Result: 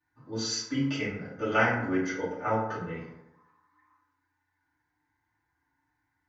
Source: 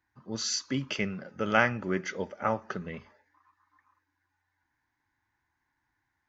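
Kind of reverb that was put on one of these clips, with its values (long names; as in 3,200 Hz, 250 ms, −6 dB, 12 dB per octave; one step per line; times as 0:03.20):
feedback delay network reverb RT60 0.85 s, low-frequency decay 1×, high-frequency decay 0.45×, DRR −10 dB
level −10 dB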